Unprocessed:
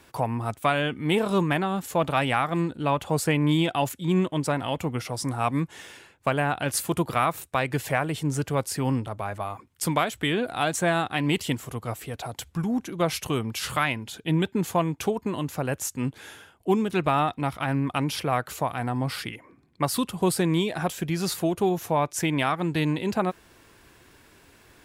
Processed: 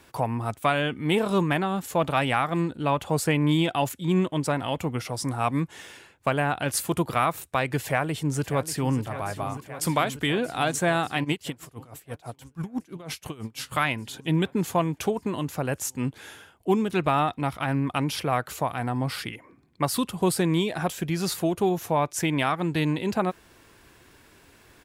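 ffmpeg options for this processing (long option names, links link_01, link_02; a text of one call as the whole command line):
ffmpeg -i in.wav -filter_complex "[0:a]asplit=2[link_01][link_02];[link_02]afade=type=in:start_time=7.84:duration=0.01,afade=type=out:start_time=8.98:duration=0.01,aecho=0:1:590|1180|1770|2360|2950|3540|4130|4720|5310|5900|6490|7080:0.223872|0.179098|0.143278|0.114623|0.091698|0.0733584|0.0586867|0.0469494|0.0375595|0.0300476|0.0240381|0.0192305[link_03];[link_01][link_03]amix=inputs=2:normalize=0,asplit=3[link_04][link_05][link_06];[link_04]afade=type=out:start_time=11.23:duration=0.02[link_07];[link_05]aeval=exprs='val(0)*pow(10,-23*(0.5-0.5*cos(2*PI*6.1*n/s))/20)':channel_layout=same,afade=type=in:start_time=11.23:duration=0.02,afade=type=out:start_time=13.71:duration=0.02[link_08];[link_06]afade=type=in:start_time=13.71:duration=0.02[link_09];[link_07][link_08][link_09]amix=inputs=3:normalize=0" out.wav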